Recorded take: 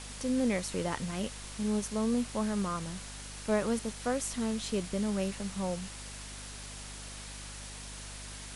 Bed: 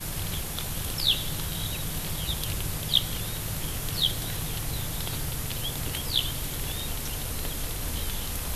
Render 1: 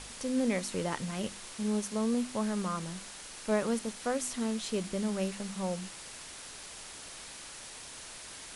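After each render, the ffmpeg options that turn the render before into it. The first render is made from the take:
-af "bandreject=f=50:t=h:w=4,bandreject=f=100:t=h:w=4,bandreject=f=150:t=h:w=4,bandreject=f=200:t=h:w=4,bandreject=f=250:t=h:w=4,bandreject=f=300:t=h:w=4,bandreject=f=350:t=h:w=4"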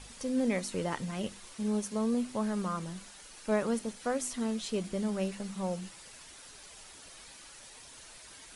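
-af "afftdn=nr=8:nf=-47"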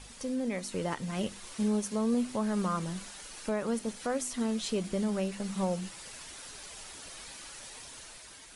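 -af "alimiter=level_in=2dB:limit=-24dB:level=0:latency=1:release=355,volume=-2dB,dynaudnorm=f=200:g=7:m=5dB"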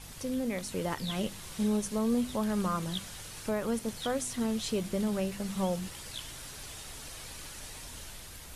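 -filter_complex "[1:a]volume=-17dB[a];[0:a][a]amix=inputs=2:normalize=0"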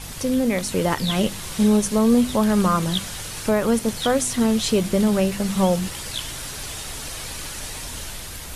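-af "volume=12dB"

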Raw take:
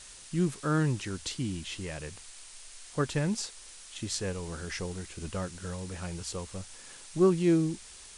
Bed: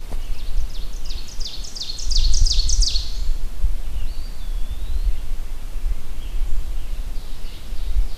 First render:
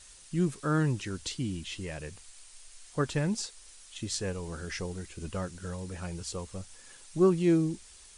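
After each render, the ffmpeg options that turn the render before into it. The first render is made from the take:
-af "afftdn=nr=6:nf=-49"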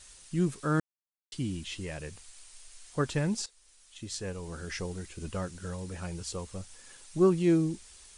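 -filter_complex "[0:a]asplit=4[a][b][c][d];[a]atrim=end=0.8,asetpts=PTS-STARTPTS,afade=t=out:st=0.796:d=0.004:c=hsin[e];[b]atrim=start=0.8:end=1.32,asetpts=PTS-STARTPTS,volume=0[f];[c]atrim=start=1.32:end=3.46,asetpts=PTS-STARTPTS,afade=t=in:d=0.004:c=hsin,afade=t=out:st=2.136:d=0.004:c=hsin:silence=0.223872[g];[d]atrim=start=3.46,asetpts=PTS-STARTPTS,afade=t=in:d=1.35:silence=0.223872[h];[e][f][g][h]concat=n=4:v=0:a=1"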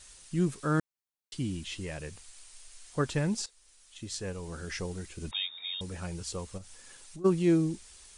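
-filter_complex "[0:a]asettb=1/sr,asplit=3[a][b][c];[a]atrim=end=5.314[d];[b]atrim=start=5.31:end=5.81,asetpts=PTS-STARTPTS,afade=t=in:d=0.004:c=qsin,afade=t=out:st=0.496:d=0.004:c=qsin,lowpass=f=3.2k:t=q:w=0.5098,lowpass=f=3.2k:t=q:w=0.6013,lowpass=f=3.2k:t=q:w=0.9,lowpass=f=3.2k:t=q:w=2.563,afreqshift=-3800[e];[c]atrim=start=5.806[f];[d][e]acrossfade=d=0.004:c1=hsin:c2=qsin[g];[g][f]acrossfade=d=0.004:c1=qsin:c2=hsin,asplit=3[h][i][j];[h]afade=t=out:st=6.57:d=0.02[k];[i]acompressor=threshold=-42dB:ratio=6:attack=3.2:release=140:knee=1:detection=peak,afade=t=in:st=6.57:d=0.02,afade=t=out:st=7.24:d=0.02[l];[j]afade=t=in:st=7.24:d=0.02[m];[k][l][m]amix=inputs=3:normalize=0"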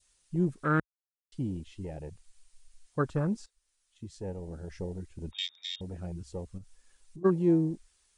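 -af "afwtdn=0.0178,adynamicequalizer=threshold=0.00316:dfrequency=1500:dqfactor=1.5:tfrequency=1500:tqfactor=1.5:attack=5:release=100:ratio=0.375:range=2.5:mode=boostabove:tftype=bell"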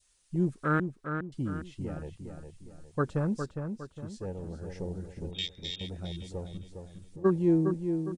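-filter_complex "[0:a]asplit=2[a][b];[b]adelay=409,lowpass=f=3.5k:p=1,volume=-6.5dB,asplit=2[c][d];[d]adelay=409,lowpass=f=3.5k:p=1,volume=0.41,asplit=2[e][f];[f]adelay=409,lowpass=f=3.5k:p=1,volume=0.41,asplit=2[g][h];[h]adelay=409,lowpass=f=3.5k:p=1,volume=0.41,asplit=2[i][j];[j]adelay=409,lowpass=f=3.5k:p=1,volume=0.41[k];[a][c][e][g][i][k]amix=inputs=6:normalize=0"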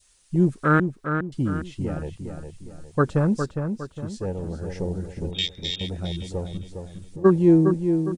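-af "volume=8.5dB"

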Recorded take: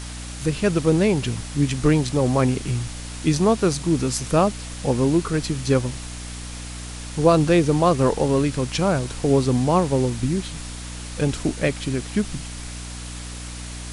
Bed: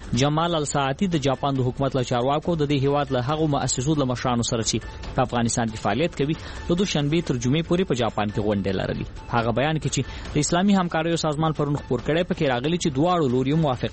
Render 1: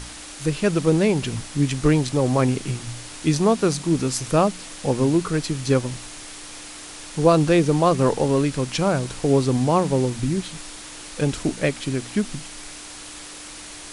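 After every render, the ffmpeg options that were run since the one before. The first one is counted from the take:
-af "bandreject=f=60:t=h:w=4,bandreject=f=120:t=h:w=4,bandreject=f=180:t=h:w=4,bandreject=f=240:t=h:w=4"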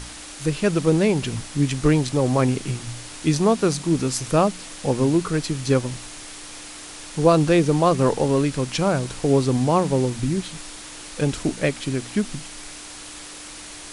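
-af anull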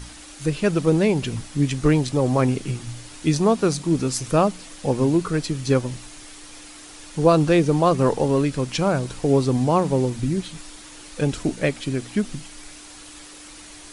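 -af "afftdn=nr=6:nf=-39"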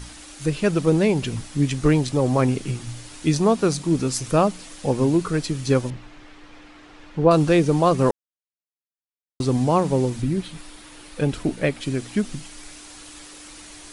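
-filter_complex "[0:a]asettb=1/sr,asplit=3[a][b][c];[a]atrim=end=5.904[d];[b]atrim=start=5.9:end=7.31,asetpts=PTS-STARTPTS,afade=t=in:d=0.004:c=qsin,afade=t=out:st=1.406:d=0.004:c=qsin,lowpass=2.4k[e];[c]atrim=start=7.306[f];[d][e]acrossfade=d=0.004:c1=hsin:c2=qsin[g];[g][f]acrossfade=d=0.004:c1=qsin:c2=hsin,asettb=1/sr,asplit=3[h][i][j];[h]atrim=end=10.224[k];[i]atrim=start=10.22:end=11.81,asetpts=PTS-STARTPTS,afade=t=in:d=0.004:c=qsin,afade=t=out:st=1.586:d=0.004:c=qsin,equalizer=f=6.7k:w=1.2:g=-7[l];[j]atrim=start=11.806[m];[k][l]acrossfade=d=0.004:c1=hsin:c2=qsin[n];[n][m]acrossfade=d=0.004:c1=qsin:c2=hsin,asplit=3[o][p][q];[o]atrim=end=8.11,asetpts=PTS-STARTPTS,afade=t=out:st=8.106:d=0.004:c=hsin[r];[p]atrim=start=8.11:end=9.4,asetpts=PTS-STARTPTS,volume=0[s];[q]atrim=start=9.4,asetpts=PTS-STARTPTS,afade=t=in:d=0.004:c=hsin[t];[r][s][t]concat=n=3:v=0:a=1"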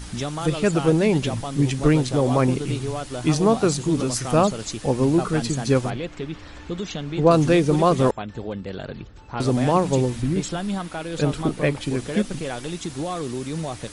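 -filter_complex "[1:a]volume=-8dB[a];[0:a][a]amix=inputs=2:normalize=0"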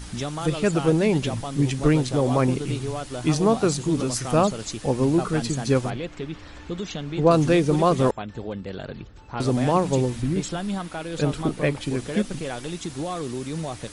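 -af "volume=-1.5dB"

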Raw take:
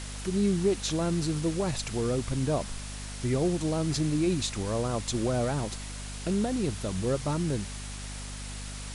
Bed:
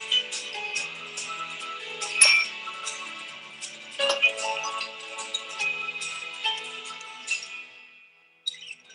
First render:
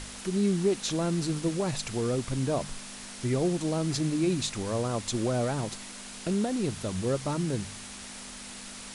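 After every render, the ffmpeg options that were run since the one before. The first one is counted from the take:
-af "bandreject=f=50:t=h:w=4,bandreject=f=100:t=h:w=4,bandreject=f=150:t=h:w=4"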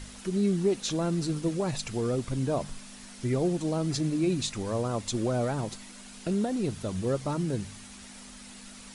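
-af "afftdn=nr=7:nf=-43"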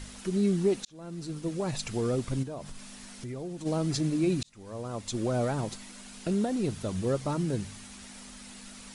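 -filter_complex "[0:a]asplit=3[a][b][c];[a]afade=t=out:st=2.42:d=0.02[d];[b]acompressor=threshold=-38dB:ratio=3:attack=3.2:release=140:knee=1:detection=peak,afade=t=in:st=2.42:d=0.02,afade=t=out:st=3.65:d=0.02[e];[c]afade=t=in:st=3.65:d=0.02[f];[d][e][f]amix=inputs=3:normalize=0,asplit=3[g][h][i];[g]atrim=end=0.85,asetpts=PTS-STARTPTS,afade=t=out:st=0.846:d=0.004:c=hsin[j];[h]atrim=start=0.85:end=4.43,asetpts=PTS-STARTPTS,afade=t=in:d=1,afade=t=out:st=3.576:d=0.004:c=hsin[k];[i]atrim=start=4.43,asetpts=PTS-STARTPTS,afade=t=in:d=0.96[l];[j][k][l]concat=n=3:v=0:a=1"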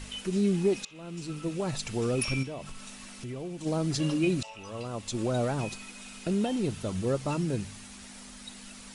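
-filter_complex "[1:a]volume=-17dB[a];[0:a][a]amix=inputs=2:normalize=0"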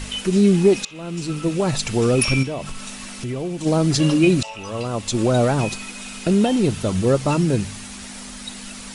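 -af "volume=11dB"

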